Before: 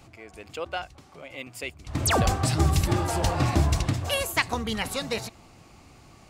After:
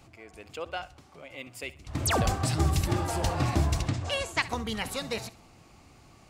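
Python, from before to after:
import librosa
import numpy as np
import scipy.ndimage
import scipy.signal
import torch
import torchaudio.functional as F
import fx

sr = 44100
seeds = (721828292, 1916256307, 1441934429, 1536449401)

y = fx.lowpass(x, sr, hz=8200.0, slope=24, at=(3.88, 4.42))
y = fx.echo_feedback(y, sr, ms=66, feedback_pct=35, wet_db=-18.5)
y = F.gain(torch.from_numpy(y), -3.5).numpy()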